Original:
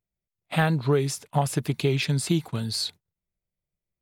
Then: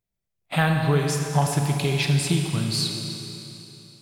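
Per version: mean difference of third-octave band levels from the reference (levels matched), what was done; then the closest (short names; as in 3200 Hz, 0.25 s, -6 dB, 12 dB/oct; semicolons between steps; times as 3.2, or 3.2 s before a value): 7.5 dB: Schroeder reverb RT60 3.1 s, combs from 28 ms, DRR 2.5 dB; dynamic EQ 350 Hz, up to -6 dB, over -35 dBFS, Q 1.2; gain +2 dB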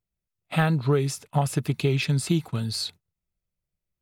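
1.5 dB: low shelf 150 Hz +5.5 dB; small resonant body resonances 1300/2600 Hz, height 7 dB; gain -1.5 dB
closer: second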